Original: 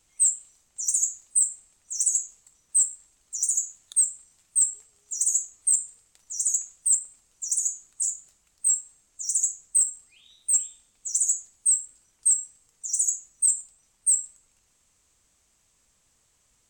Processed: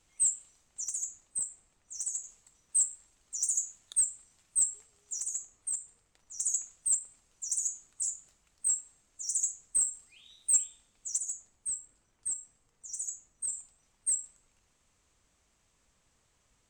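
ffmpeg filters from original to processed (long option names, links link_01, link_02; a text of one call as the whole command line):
ffmpeg -i in.wav -af "asetnsamples=nb_out_samples=441:pad=0,asendcmd='0.84 lowpass f 1900;2.24 lowpass f 4500;5.2 lowpass f 1800;6.4 lowpass f 3900;9.83 lowpass f 6800;10.64 lowpass f 3700;11.18 lowpass f 1600;13.53 lowpass f 3100',lowpass=frequency=4200:poles=1" out.wav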